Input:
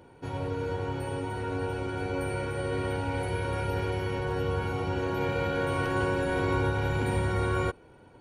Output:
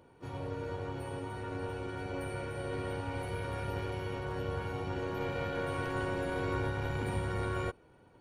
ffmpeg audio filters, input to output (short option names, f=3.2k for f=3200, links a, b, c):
-filter_complex "[0:a]asplit=2[a][b];[b]asetrate=55563,aresample=44100,atempo=0.793701,volume=-12dB[c];[a][c]amix=inputs=2:normalize=0,aeval=exprs='0.188*(cos(1*acos(clip(val(0)/0.188,-1,1)))-cos(1*PI/2))+0.0119*(cos(4*acos(clip(val(0)/0.188,-1,1)))-cos(4*PI/2))':c=same,volume=-7dB"